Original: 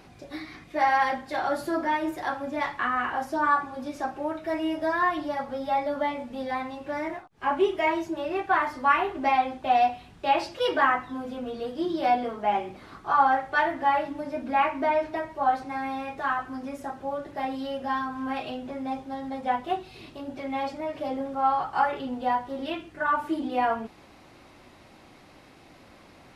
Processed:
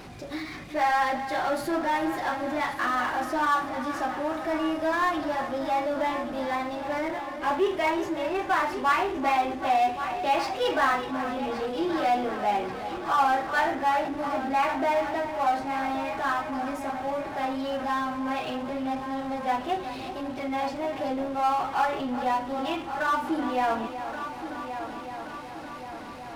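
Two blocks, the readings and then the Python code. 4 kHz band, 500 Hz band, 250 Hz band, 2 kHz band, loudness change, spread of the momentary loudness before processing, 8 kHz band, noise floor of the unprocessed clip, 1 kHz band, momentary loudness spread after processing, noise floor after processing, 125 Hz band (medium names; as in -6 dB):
+2.0 dB, +0.5 dB, +1.5 dB, 0.0 dB, 0.0 dB, 11 LU, no reading, -53 dBFS, 0.0 dB, 10 LU, -39 dBFS, +2.5 dB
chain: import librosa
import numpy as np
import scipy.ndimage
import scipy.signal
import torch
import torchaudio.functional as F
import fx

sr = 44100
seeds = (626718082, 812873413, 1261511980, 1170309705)

y = fx.echo_heads(x, sr, ms=375, heads='first and third', feedback_pct=62, wet_db=-15.0)
y = fx.power_curve(y, sr, exponent=0.7)
y = y * librosa.db_to_amplitude(-4.5)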